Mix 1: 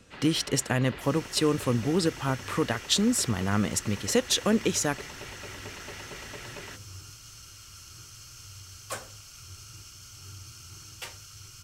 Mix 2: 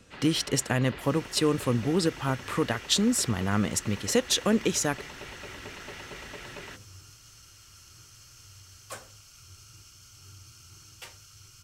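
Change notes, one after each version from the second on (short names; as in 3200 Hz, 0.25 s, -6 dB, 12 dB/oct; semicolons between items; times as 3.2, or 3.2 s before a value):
second sound -5.0 dB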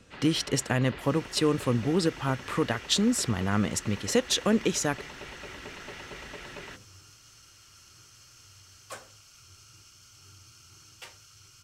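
second sound: add low shelf 120 Hz -8.5 dB; master: add high shelf 9500 Hz -7 dB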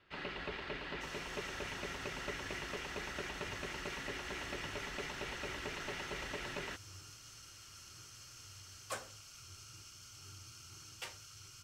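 speech: muted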